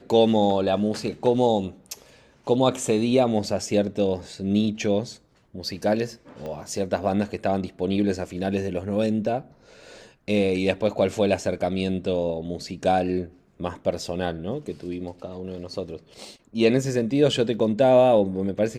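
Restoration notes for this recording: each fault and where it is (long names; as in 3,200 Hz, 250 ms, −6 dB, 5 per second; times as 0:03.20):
0:06.46: click −23 dBFS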